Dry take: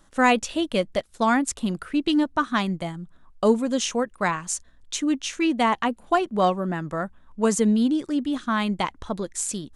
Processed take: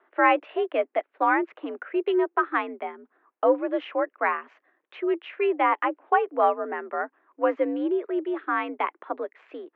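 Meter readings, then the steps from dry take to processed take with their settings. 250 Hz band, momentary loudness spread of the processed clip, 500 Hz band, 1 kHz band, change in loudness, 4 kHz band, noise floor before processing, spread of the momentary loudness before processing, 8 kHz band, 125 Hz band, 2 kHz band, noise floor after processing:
−7.5 dB, 11 LU, +1.0 dB, +0.5 dB, −1.5 dB, −13.0 dB, −55 dBFS, 10 LU, below −40 dB, below −35 dB, 0.0 dB, −80 dBFS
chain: single-sideband voice off tune +69 Hz 280–2,400 Hz

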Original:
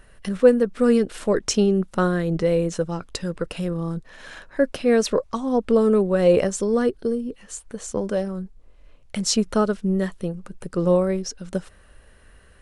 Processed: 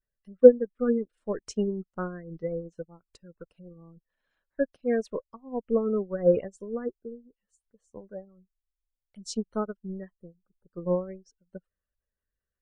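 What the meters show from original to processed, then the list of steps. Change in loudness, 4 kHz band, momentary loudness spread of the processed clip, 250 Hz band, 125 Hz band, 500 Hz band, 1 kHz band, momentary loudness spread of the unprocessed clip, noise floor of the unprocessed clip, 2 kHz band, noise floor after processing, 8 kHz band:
−5.0 dB, below −15 dB, 20 LU, −9.5 dB, −12.5 dB, −5.5 dB, −12.0 dB, 15 LU, −52 dBFS, −13.0 dB, below −85 dBFS, below −15 dB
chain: gate on every frequency bin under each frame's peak −25 dB strong
expander for the loud parts 2.5 to 1, over −36 dBFS
level +2.5 dB

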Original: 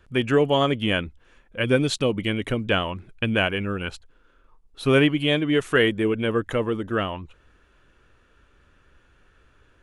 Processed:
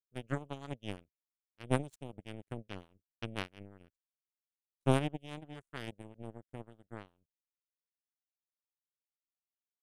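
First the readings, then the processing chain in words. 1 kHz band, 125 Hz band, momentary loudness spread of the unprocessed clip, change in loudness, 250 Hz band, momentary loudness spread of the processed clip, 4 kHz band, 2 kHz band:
−14.5 dB, −12.5 dB, 11 LU, −16.5 dB, −17.5 dB, 19 LU, −22.5 dB, −22.0 dB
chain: rotating-speaker cabinet horn 5.5 Hz, later 0.85 Hz, at 0:04.22
graphic EQ with 10 bands 125 Hz +6 dB, 500 Hz −11 dB, 1,000 Hz −4 dB, 2,000 Hz −11 dB, 4,000 Hz −12 dB, 8,000 Hz +5 dB
power curve on the samples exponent 3

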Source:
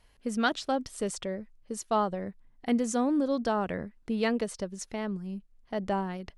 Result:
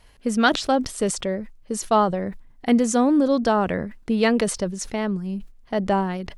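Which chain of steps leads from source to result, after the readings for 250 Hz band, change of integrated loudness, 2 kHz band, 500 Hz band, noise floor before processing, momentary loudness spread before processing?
+8.5 dB, +8.5 dB, +8.5 dB, +8.5 dB, −62 dBFS, 13 LU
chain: level that may fall only so fast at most 120 dB per second
level +8.5 dB

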